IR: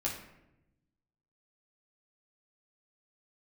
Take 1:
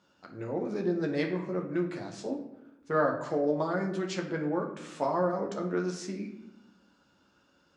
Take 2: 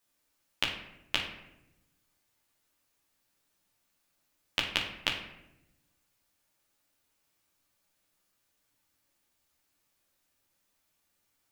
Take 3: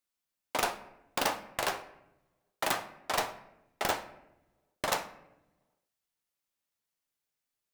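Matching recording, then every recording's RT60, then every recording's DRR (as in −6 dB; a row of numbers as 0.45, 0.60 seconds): 2; 0.90, 0.90, 0.95 seconds; 0.5, −4.0, 7.5 decibels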